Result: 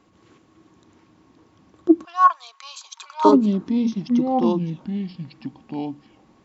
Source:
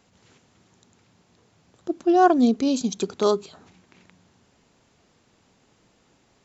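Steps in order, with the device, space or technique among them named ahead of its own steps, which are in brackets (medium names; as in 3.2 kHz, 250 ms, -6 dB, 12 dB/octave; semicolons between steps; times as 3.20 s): inside a helmet (treble shelf 4.4 kHz -9.5 dB; small resonant body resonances 320/1100 Hz, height 16 dB, ringing for 90 ms); ever faster or slower copies 587 ms, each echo -3 st, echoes 2, each echo -6 dB; 2.05–3.25 s: elliptic high-pass 950 Hz, stop band 70 dB; trim +1 dB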